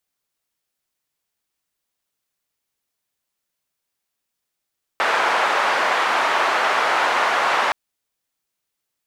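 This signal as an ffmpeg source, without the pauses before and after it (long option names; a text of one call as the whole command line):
ffmpeg -f lavfi -i "anoisesrc=color=white:duration=2.72:sample_rate=44100:seed=1,highpass=frequency=870,lowpass=frequency=1100,volume=3dB" out.wav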